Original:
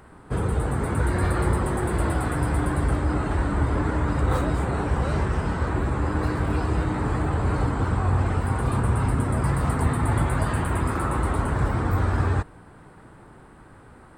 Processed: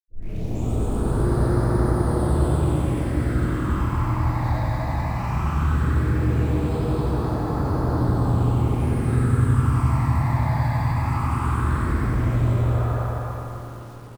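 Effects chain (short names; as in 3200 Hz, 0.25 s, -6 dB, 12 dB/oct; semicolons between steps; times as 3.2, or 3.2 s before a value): tape start at the beginning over 0.62 s; spectral repair 12.12–12.85, 450–2800 Hz before; in parallel at -1 dB: compressor 16:1, threshold -31 dBFS, peak gain reduction 15.5 dB; on the sum: phaser stages 8, 0.17 Hz, lowest notch 390–2700 Hz; feedback echo 0.254 s, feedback 48%, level -4 dB; reverb RT60 2.5 s, pre-delay 77 ms; lo-fi delay 93 ms, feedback 35%, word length 9-bit, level -5.5 dB; gain +7.5 dB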